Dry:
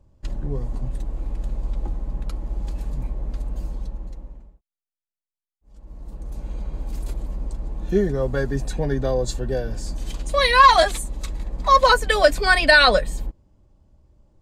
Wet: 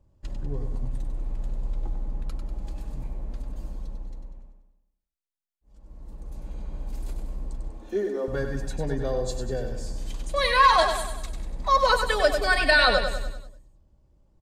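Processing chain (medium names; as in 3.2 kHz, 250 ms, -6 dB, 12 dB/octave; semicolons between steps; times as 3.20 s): 7.70–8.28 s: elliptic high-pass 230 Hz; on a send: feedback delay 97 ms, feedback 50%, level -7 dB; on the sum: trim -6 dB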